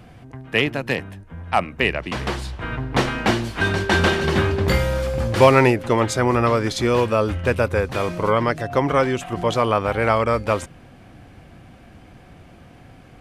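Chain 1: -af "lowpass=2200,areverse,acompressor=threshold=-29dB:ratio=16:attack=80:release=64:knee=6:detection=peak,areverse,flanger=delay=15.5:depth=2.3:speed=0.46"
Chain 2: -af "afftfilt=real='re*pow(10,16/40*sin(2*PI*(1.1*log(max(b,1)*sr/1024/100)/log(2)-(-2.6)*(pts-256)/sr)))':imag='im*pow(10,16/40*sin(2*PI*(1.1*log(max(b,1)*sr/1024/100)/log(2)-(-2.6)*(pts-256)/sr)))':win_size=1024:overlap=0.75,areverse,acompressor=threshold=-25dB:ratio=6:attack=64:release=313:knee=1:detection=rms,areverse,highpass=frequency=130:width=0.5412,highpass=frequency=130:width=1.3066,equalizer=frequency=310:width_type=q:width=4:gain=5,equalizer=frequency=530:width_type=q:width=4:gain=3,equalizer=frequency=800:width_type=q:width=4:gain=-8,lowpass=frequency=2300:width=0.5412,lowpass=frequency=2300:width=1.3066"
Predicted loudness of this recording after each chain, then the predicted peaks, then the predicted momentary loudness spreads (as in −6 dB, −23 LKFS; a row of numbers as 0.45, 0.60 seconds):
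−30.5, −27.5 LKFS; −14.5, −11.0 dBFS; 21, 19 LU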